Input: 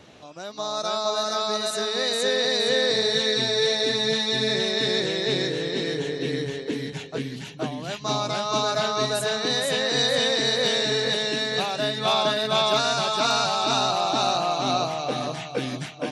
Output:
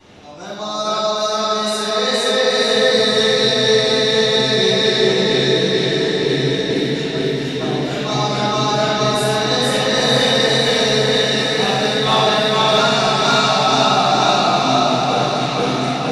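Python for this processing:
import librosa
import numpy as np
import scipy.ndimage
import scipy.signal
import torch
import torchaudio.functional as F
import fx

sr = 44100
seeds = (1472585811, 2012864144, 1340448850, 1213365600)

p1 = fx.peak_eq(x, sr, hz=1200.0, db=-2.5, octaves=0.21)
p2 = p1 + fx.echo_diffused(p1, sr, ms=1001, feedback_pct=53, wet_db=-6.0, dry=0)
p3 = fx.room_shoebox(p2, sr, seeds[0], volume_m3=570.0, walls='mixed', distance_m=9.4)
y = F.gain(torch.from_numpy(p3), -9.0).numpy()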